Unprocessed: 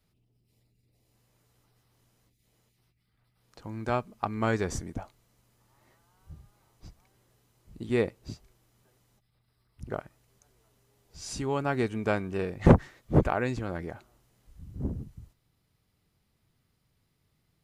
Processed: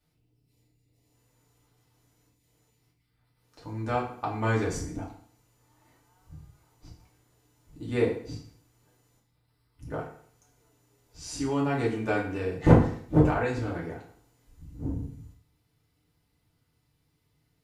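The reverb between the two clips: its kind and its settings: FDN reverb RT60 0.56 s, low-frequency decay 1×, high-frequency decay 0.9×, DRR -5 dB; trim -5.5 dB

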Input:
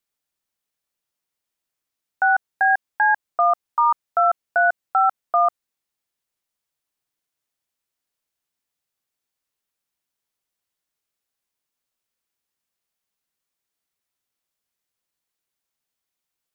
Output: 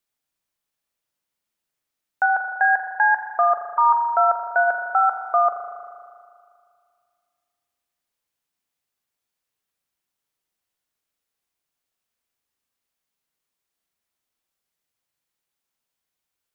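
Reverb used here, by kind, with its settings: spring tank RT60 2.2 s, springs 38 ms, chirp 55 ms, DRR 4 dB

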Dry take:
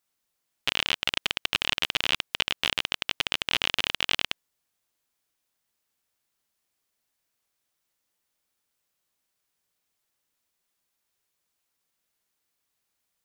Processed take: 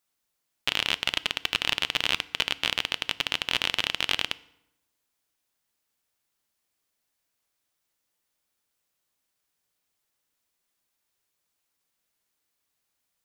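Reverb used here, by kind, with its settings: FDN reverb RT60 0.86 s, low-frequency decay 1.2×, high-frequency decay 0.75×, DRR 16.5 dB

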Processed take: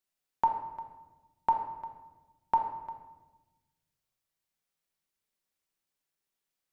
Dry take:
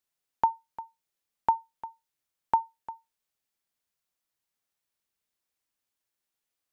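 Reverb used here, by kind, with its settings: simulated room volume 660 m³, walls mixed, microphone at 1.1 m; trim -3 dB

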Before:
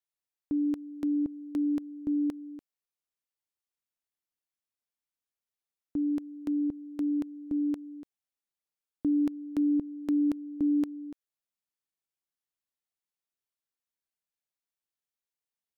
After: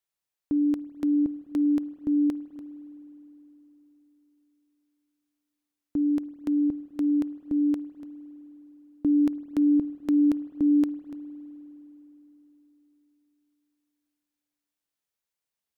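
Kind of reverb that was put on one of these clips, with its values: spring tank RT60 4 s, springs 51 ms, chirp 30 ms, DRR 15.5 dB; trim +4 dB

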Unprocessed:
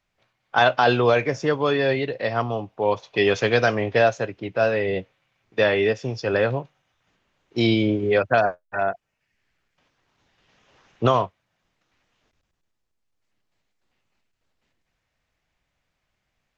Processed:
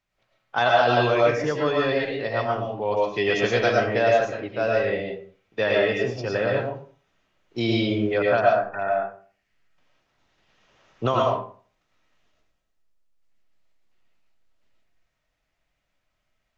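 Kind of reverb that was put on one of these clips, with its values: algorithmic reverb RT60 0.44 s, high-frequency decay 0.65×, pre-delay 70 ms, DRR -2 dB; trim -5 dB

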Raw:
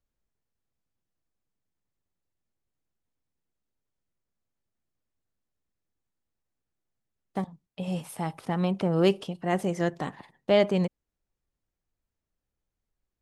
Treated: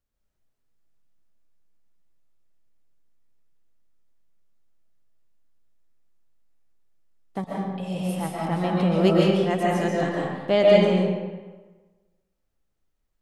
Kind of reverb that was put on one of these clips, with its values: algorithmic reverb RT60 1.3 s, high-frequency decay 0.7×, pre-delay 95 ms, DRR -4.5 dB

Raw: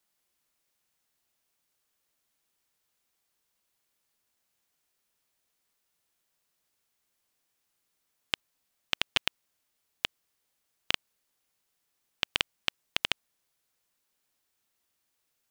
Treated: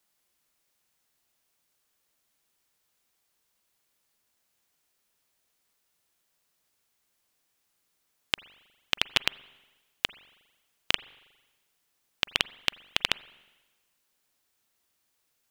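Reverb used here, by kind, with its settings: spring tank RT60 1.2 s, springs 40/45 ms, chirp 60 ms, DRR 19.5 dB; trim +3 dB

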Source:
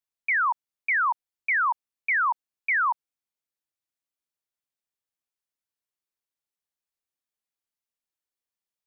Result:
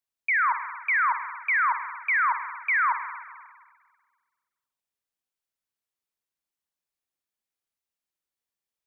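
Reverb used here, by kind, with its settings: spring tank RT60 1.6 s, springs 44/59 ms, chirp 55 ms, DRR 7.5 dB

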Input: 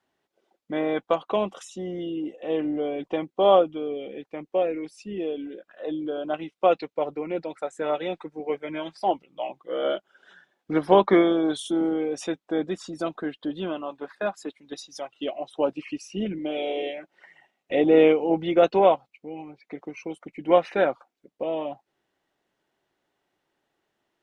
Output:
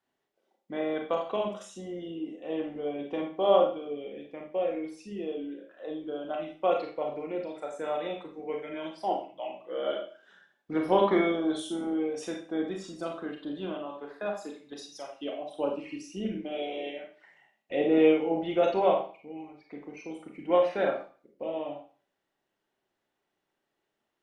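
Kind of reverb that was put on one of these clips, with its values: Schroeder reverb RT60 0.41 s, combs from 28 ms, DRR 1 dB; trim -7.5 dB

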